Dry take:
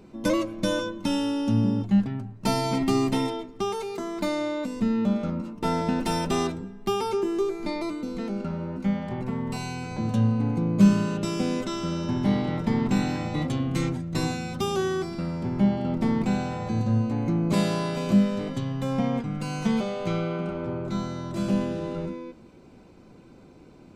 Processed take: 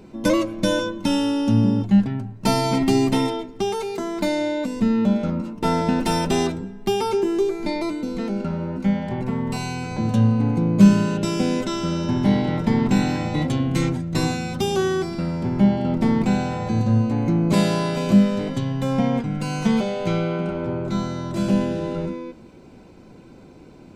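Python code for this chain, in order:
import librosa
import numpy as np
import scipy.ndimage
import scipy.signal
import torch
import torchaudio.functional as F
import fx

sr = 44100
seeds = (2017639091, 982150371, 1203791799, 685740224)

y = fx.notch(x, sr, hz=1200.0, q=16.0)
y = F.gain(torch.from_numpy(y), 5.0).numpy()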